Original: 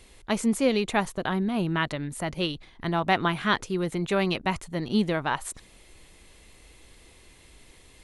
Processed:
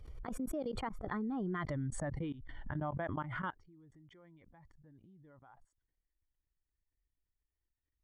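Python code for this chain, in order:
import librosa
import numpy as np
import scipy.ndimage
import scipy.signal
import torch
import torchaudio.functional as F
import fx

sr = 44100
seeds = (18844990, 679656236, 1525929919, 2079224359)

y = fx.bin_expand(x, sr, power=1.5)
y = fx.doppler_pass(y, sr, speed_mps=43, closest_m=6.5, pass_at_s=1.7)
y = fx.level_steps(y, sr, step_db=23)
y = scipy.signal.savgol_filter(y, 41, 4, mode='constant')
y = fx.pre_swell(y, sr, db_per_s=35.0)
y = y * 10.0 ** (9.5 / 20.0)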